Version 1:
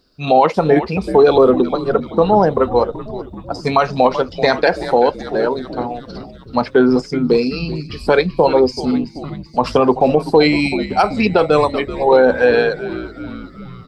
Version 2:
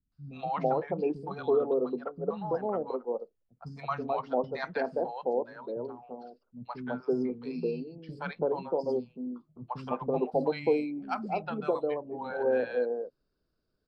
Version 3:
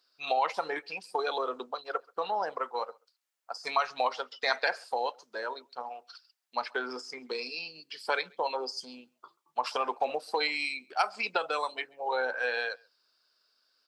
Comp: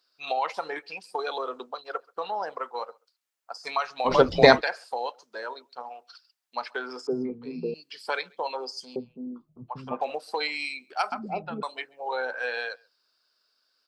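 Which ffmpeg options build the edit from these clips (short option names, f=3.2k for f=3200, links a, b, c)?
-filter_complex "[1:a]asplit=3[a][b][c];[2:a]asplit=5[d][e][f][g][h];[d]atrim=end=4.14[i];[0:a]atrim=start=4.04:end=4.62[j];[e]atrim=start=4.52:end=7.072[k];[a]atrim=start=7.068:end=7.742[l];[f]atrim=start=7.738:end=8.962[m];[b]atrim=start=8.958:end=10.012[n];[g]atrim=start=10.008:end=11.122[o];[c]atrim=start=11.118:end=11.632[p];[h]atrim=start=11.628[q];[i][j]acrossfade=d=0.1:c1=tri:c2=tri[r];[r][k]acrossfade=d=0.1:c1=tri:c2=tri[s];[s][l]acrossfade=d=0.004:c1=hsin:c2=hsin[t];[t][m]acrossfade=d=0.004:c1=hsin:c2=hsin[u];[u][n]acrossfade=d=0.004:c1=hsin:c2=hsin[v];[v][o]acrossfade=d=0.004:c1=hsin:c2=hsin[w];[w][p]acrossfade=d=0.004:c1=hsin:c2=hsin[x];[x][q]acrossfade=d=0.004:c1=hsin:c2=hsin"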